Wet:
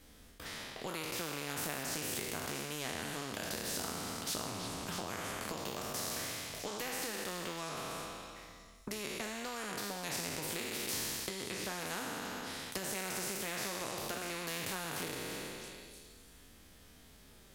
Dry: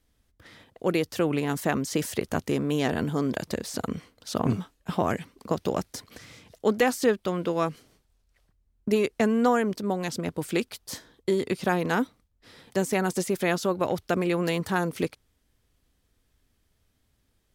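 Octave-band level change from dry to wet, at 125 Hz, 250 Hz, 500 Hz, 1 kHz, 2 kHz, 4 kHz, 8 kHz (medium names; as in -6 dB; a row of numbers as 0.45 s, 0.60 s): -15.0 dB, -17.0 dB, -16.0 dB, -11.0 dB, -7.5 dB, -1.0 dB, +0.5 dB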